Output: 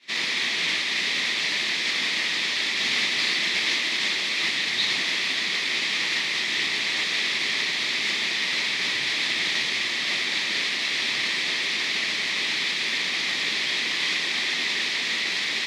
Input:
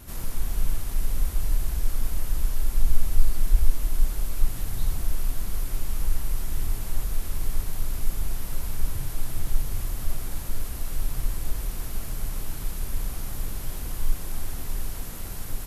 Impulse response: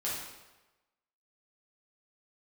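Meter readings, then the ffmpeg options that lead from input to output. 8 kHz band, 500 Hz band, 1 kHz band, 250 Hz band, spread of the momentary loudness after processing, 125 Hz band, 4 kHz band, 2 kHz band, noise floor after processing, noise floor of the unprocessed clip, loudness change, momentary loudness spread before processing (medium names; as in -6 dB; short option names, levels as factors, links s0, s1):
+5.0 dB, +6.0 dB, +8.5 dB, +3.0 dB, 2 LU, -17.5 dB, +24.0 dB, +25.0 dB, -27 dBFS, -34 dBFS, +9.5 dB, 6 LU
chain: -filter_complex "[0:a]aexciter=amount=9.4:drive=9.4:freq=2200,asplit=2[s0][s1];[s1]alimiter=limit=0.447:level=0:latency=1,volume=0.794[s2];[s0][s2]amix=inputs=2:normalize=0,agate=range=0.0224:threshold=0.562:ratio=3:detection=peak,highpass=f=240:w=0.5412,highpass=f=240:w=1.3066,equalizer=f=280:t=q:w=4:g=-4,equalizer=f=510:t=q:w=4:g=-4,equalizer=f=730:t=q:w=4:g=-4,equalizer=f=1200:t=q:w=4:g=4,equalizer=f=1900:t=q:w=4:g=7,equalizer=f=2900:t=q:w=4:g=-9,lowpass=f=3200:w=0.5412,lowpass=f=3200:w=1.3066,volume=2.66"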